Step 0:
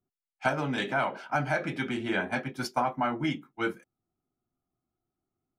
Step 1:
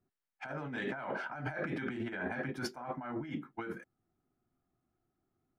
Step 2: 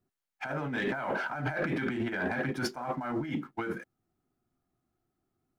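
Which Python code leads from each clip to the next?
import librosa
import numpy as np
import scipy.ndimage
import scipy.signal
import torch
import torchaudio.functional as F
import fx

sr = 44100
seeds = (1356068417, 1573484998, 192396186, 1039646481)

y1 = fx.high_shelf(x, sr, hz=2300.0, db=-11.0)
y1 = fx.over_compress(y1, sr, threshold_db=-38.0, ratio=-1.0)
y1 = fx.peak_eq(y1, sr, hz=1700.0, db=7.0, octaves=0.63)
y1 = y1 * librosa.db_to_amplitude(-2.0)
y2 = fx.leveller(y1, sr, passes=1)
y2 = y2 * librosa.db_to_amplitude(3.0)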